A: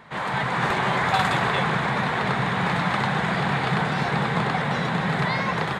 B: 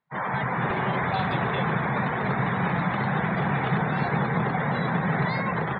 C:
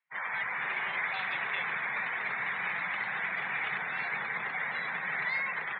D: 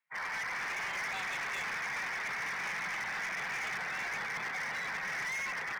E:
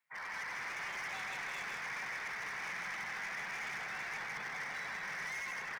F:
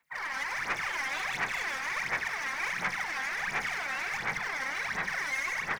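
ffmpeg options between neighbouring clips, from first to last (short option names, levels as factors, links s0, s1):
-filter_complex "[0:a]afftdn=nr=35:nf=-31,acrossover=split=580[s0][s1];[s1]alimiter=limit=0.0891:level=0:latency=1:release=69[s2];[s0][s2]amix=inputs=2:normalize=0"
-af "bandpass=f=2300:t=q:w=2.7:csg=0,volume=1.5"
-af "asoftclip=type=hard:threshold=0.02"
-af "alimiter=level_in=7.5:limit=0.0631:level=0:latency=1,volume=0.133,aecho=1:1:159:0.631,volume=1.19"
-af "aphaser=in_gain=1:out_gain=1:delay=3.8:decay=0.69:speed=1.4:type=sinusoidal,aeval=exprs='0.0531*(cos(1*acos(clip(val(0)/0.0531,-1,1)))-cos(1*PI/2))+0.0015*(cos(4*acos(clip(val(0)/0.0531,-1,1)))-cos(4*PI/2))':c=same,volume=1.78"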